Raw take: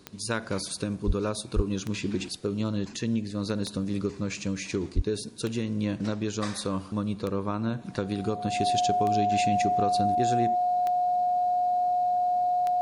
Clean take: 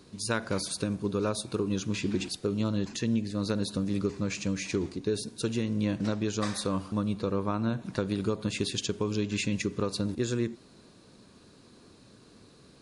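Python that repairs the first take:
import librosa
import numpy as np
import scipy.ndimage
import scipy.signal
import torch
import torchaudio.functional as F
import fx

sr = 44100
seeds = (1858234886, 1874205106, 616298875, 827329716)

y = fx.fix_declick_ar(x, sr, threshold=10.0)
y = fx.notch(y, sr, hz=720.0, q=30.0)
y = fx.highpass(y, sr, hz=140.0, slope=24, at=(1.06, 1.18), fade=0.02)
y = fx.highpass(y, sr, hz=140.0, slope=24, at=(1.55, 1.67), fade=0.02)
y = fx.highpass(y, sr, hz=140.0, slope=24, at=(4.95, 5.07), fade=0.02)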